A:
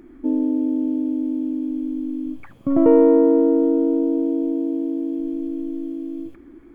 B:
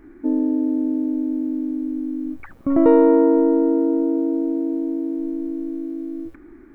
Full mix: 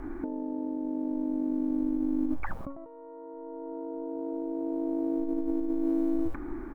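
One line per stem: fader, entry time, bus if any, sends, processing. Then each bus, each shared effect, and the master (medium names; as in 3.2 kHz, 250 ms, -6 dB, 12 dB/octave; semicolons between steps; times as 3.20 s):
-10.5 dB, 0.00 s, no send, elliptic band-pass 180–1200 Hz; Shepard-style phaser rising 0.84 Hz
-3.5 dB, 0.5 ms, polarity flipped, no send, FFT filter 410 Hz 0 dB, 900 Hz +10 dB, 1.9 kHz -2 dB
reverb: none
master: bass shelf 82 Hz +8.5 dB; compressor with a negative ratio -34 dBFS, ratio -1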